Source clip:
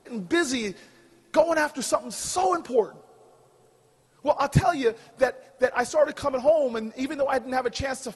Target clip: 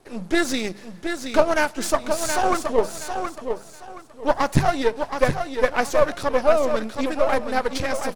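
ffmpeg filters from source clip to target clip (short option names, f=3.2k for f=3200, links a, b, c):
-af "aeval=exprs='if(lt(val(0),0),0.251*val(0),val(0))':c=same,bandreject=f=50:t=h:w=6,bandreject=f=100:t=h:w=6,bandreject=f=150:t=h:w=6,bandreject=f=200:t=h:w=6,aecho=1:1:722|1444|2166:0.447|0.116|0.0302,volume=5.5dB"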